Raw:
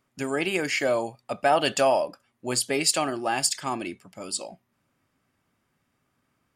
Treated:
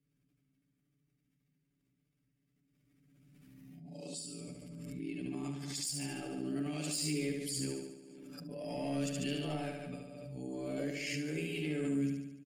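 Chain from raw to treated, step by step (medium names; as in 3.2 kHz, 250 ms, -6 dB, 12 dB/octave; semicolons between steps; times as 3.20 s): reverse the whole clip; high-pass 74 Hz; treble shelf 11 kHz +4 dB; de-hum 97.56 Hz, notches 7; saturation -11 dBFS, distortion -23 dB; FFT filter 250 Hz 0 dB, 990 Hz -27 dB, 2.2 kHz -13 dB; granular stretch 1.9×, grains 29 ms; feedback delay 72 ms, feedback 57%, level -4 dB; swell ahead of each attack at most 23 dB/s; trim -3.5 dB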